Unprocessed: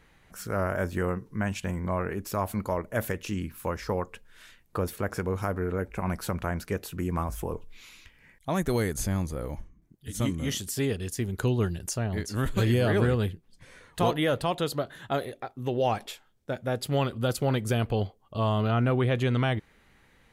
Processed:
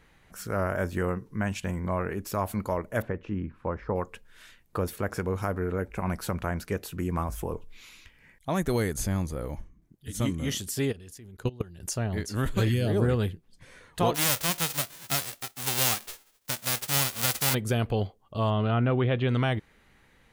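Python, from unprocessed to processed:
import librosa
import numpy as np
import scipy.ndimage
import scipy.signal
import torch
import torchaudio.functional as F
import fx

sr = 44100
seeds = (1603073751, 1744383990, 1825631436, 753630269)

y = fx.lowpass(x, sr, hz=1400.0, slope=12, at=(3.02, 3.96))
y = fx.level_steps(y, sr, step_db=23, at=(10.91, 11.81), fade=0.02)
y = fx.peak_eq(y, sr, hz=fx.line((12.68, 450.0), (13.08, 3500.0)), db=-14.5, octaves=1.4, at=(12.68, 13.08), fade=0.02)
y = fx.envelope_flatten(y, sr, power=0.1, at=(14.14, 17.53), fade=0.02)
y = fx.cheby1_lowpass(y, sr, hz=3500.0, order=3, at=(18.5, 19.29))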